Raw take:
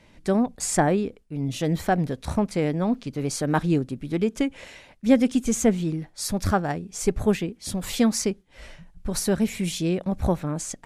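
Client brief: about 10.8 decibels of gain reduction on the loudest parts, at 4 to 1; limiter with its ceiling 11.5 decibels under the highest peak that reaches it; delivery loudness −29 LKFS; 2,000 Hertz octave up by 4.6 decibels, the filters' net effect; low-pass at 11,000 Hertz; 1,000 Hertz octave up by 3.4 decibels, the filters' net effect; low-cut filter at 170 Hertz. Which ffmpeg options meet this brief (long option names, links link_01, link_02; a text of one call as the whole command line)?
ffmpeg -i in.wav -af "highpass=170,lowpass=11000,equalizer=frequency=1000:width_type=o:gain=4,equalizer=frequency=2000:width_type=o:gain=4.5,acompressor=threshold=-26dB:ratio=4,volume=5dB,alimiter=limit=-19dB:level=0:latency=1" out.wav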